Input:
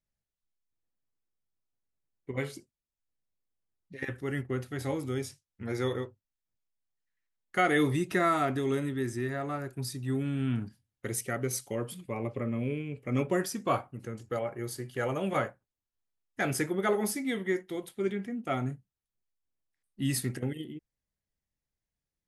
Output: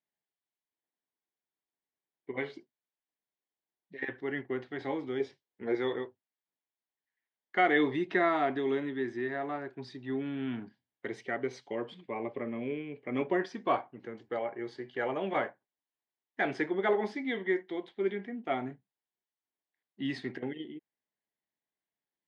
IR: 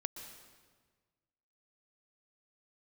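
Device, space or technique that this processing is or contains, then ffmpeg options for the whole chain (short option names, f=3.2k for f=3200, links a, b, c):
phone earpiece: -filter_complex "[0:a]highpass=360,equalizer=f=530:t=q:w=4:g=-7,equalizer=f=1.3k:t=q:w=4:g=-10,equalizer=f=2.6k:t=q:w=4:g=-8,lowpass=f=3.3k:w=0.5412,lowpass=f=3.3k:w=1.3066,asettb=1/sr,asplit=3[a][b][c];[a]atrim=end=5.204[d];[b]atrim=start=5.2:end=5.75,asetpts=PTS-STARTPTS,afade=t=in:d=0.004:c=qsin,afade=t=out:st=0.546:d=0.004:c=qsin,equalizer=f=440:w=1.5:g=8.5[e];[c]atrim=start=5.746[f];[d][e]acrossfade=d=0.004:c1=hsin:c2=qsin[g];[g][f]acrossfade=d=0.004:c1=qsin:c2=hsin,volume=4dB"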